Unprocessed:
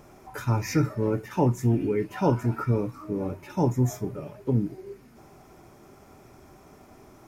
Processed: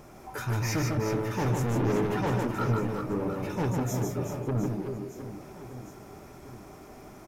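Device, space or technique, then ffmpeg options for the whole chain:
saturation between pre-emphasis and de-emphasis: -filter_complex "[0:a]bandreject=f=91.76:t=h:w=4,bandreject=f=183.52:t=h:w=4,bandreject=f=275.28:t=h:w=4,bandreject=f=367.04:t=h:w=4,bandreject=f=458.8:t=h:w=4,bandreject=f=550.56:t=h:w=4,bandreject=f=642.32:t=h:w=4,bandreject=f=734.08:t=h:w=4,bandreject=f=825.84:t=h:w=4,bandreject=f=917.6:t=h:w=4,bandreject=f=1009.36:t=h:w=4,bandreject=f=1101.12:t=h:w=4,bandreject=f=1192.88:t=h:w=4,bandreject=f=1284.64:t=h:w=4,bandreject=f=1376.4:t=h:w=4,bandreject=f=1468.16:t=h:w=4,bandreject=f=1559.92:t=h:w=4,bandreject=f=1651.68:t=h:w=4,bandreject=f=1743.44:t=h:w=4,bandreject=f=1835.2:t=h:w=4,bandreject=f=1926.96:t=h:w=4,bandreject=f=2018.72:t=h:w=4,bandreject=f=2110.48:t=h:w=4,bandreject=f=2202.24:t=h:w=4,bandreject=f=2294:t=h:w=4,bandreject=f=2385.76:t=h:w=4,bandreject=f=2477.52:t=h:w=4,bandreject=f=2569.28:t=h:w=4,bandreject=f=2661.04:t=h:w=4,bandreject=f=2752.8:t=h:w=4,bandreject=f=2844.56:t=h:w=4,bandreject=f=2936.32:t=h:w=4,bandreject=f=3028.08:t=h:w=4,bandreject=f=3119.84:t=h:w=4,bandreject=f=3211.6:t=h:w=4,bandreject=f=3303.36:t=h:w=4,bandreject=f=3395.12:t=h:w=4,asettb=1/sr,asplit=3[s0][s1][s2];[s0]atrim=end=1.454[s3];[s1]atrim=start=1.45:end=2.15,asetpts=PTS-STARTPTS,afade=t=in:d=0.004:c=qsin,afade=t=out:st=0.696:d=0.004:c=qsin,lowshelf=f=410:g=10[s4];[s2]atrim=start=2.146[s5];[s3][s4]acrossfade=d=0.004:c1=hsin:c2=qsin[s6];[s6][s5]acrossfade=d=0.004:c1=qsin:c2=hsin,highshelf=f=11000:g=9.5,asoftclip=type=tanh:threshold=0.0422,highshelf=f=11000:g=-9.5,aecho=1:1:150|375|712.5|1219|1978:0.631|0.398|0.251|0.158|0.1,volume=1.26"

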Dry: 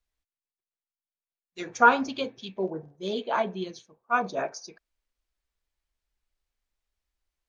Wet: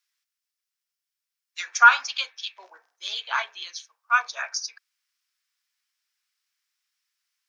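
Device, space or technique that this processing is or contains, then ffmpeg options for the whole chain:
headphones lying on a table: -af "highpass=f=1300:w=0.5412,highpass=f=1300:w=1.3066,lowshelf=f=420:g=5,equalizer=f=5300:t=o:w=0.3:g=6.5,volume=2.66"

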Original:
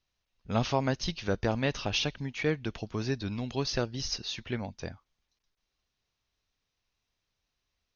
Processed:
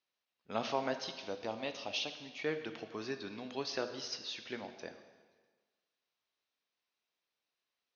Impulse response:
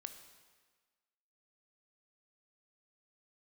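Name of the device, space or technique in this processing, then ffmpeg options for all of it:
supermarket ceiling speaker: -filter_complex "[0:a]asettb=1/sr,asplit=3[s0][s1][s2];[s0]atrim=end=1.044[s3];[s1]atrim=start=1.04:end=2.44,asetpts=PTS-STARTPTS,afade=t=in:d=0.004:c=qsin,afade=t=out:st=1.396:d=0.004:c=qsin,equalizer=f=160:t=o:w=0.67:g=-7,equalizer=f=400:t=o:w=0.67:g=-6,equalizer=f=1600:t=o:w=0.67:g=-12[s4];[s2]atrim=start=2.436[s5];[s3][s4]acrossfade=d=0.004:c1=hsin:c2=qsin[s6];[s6][s5]acrossfade=d=0.004:c1=qsin:c2=hsin,highpass=320,lowpass=5300[s7];[1:a]atrim=start_sample=2205[s8];[s7][s8]afir=irnorm=-1:irlink=0"

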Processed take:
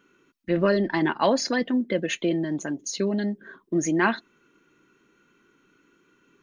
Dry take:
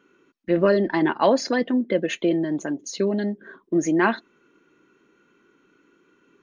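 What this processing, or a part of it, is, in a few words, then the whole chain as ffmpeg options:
smiley-face EQ: -af "lowshelf=f=140:g=5,equalizer=f=440:t=o:w=2.3:g=-4.5,highshelf=f=6300:g=5.5"

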